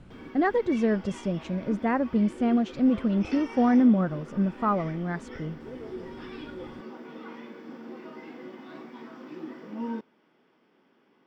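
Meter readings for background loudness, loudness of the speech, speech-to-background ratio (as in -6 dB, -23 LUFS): -41.5 LUFS, -25.5 LUFS, 16.0 dB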